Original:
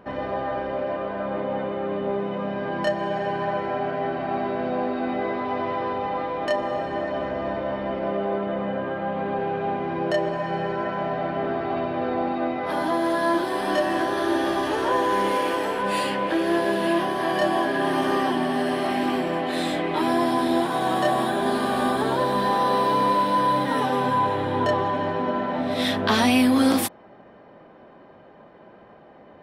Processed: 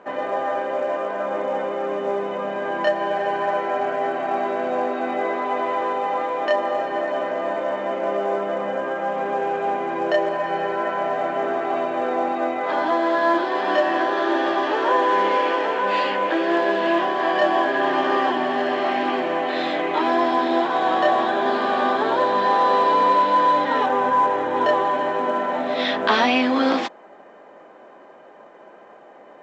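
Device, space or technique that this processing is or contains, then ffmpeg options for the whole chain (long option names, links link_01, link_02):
telephone: -filter_complex "[0:a]asettb=1/sr,asplit=3[link_01][link_02][link_03];[link_01]atrim=end=23.864[link_04];[link_02]atrim=start=23.86:end=24.56,asetpts=PTS-STARTPTS,afade=type=in:duration=0.004:curve=qsin,afade=type=out:start_time=0.696:duration=0.004:curve=qsin,acrossover=split=2700[link_05][link_06];[link_06]acompressor=threshold=-54dB:ratio=4:attack=1:release=60[link_07];[link_05][link_07]amix=inputs=2:normalize=0[link_08];[link_03]atrim=start=24.556[link_09];[link_04][link_08]acrossfade=duration=0.004:curve1=hsin:curve2=qsin[link_10];[link_10][link_09]acrossfade=duration=0.004:curve1=qsin:curve2=hsin,highpass=380,lowpass=3300,volume=4.5dB" -ar 16000 -c:a pcm_mulaw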